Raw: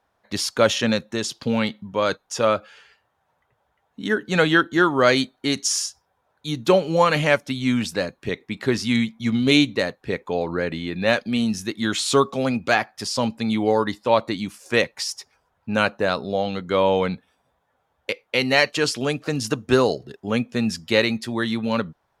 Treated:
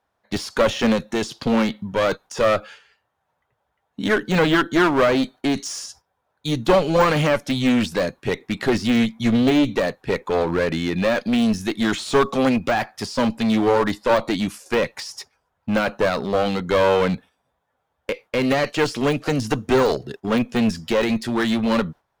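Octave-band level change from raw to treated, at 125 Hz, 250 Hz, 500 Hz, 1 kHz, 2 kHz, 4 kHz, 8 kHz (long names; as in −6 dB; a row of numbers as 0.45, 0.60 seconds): +1.5, +3.0, +1.5, +1.0, −1.5, −2.5, −5.5 decibels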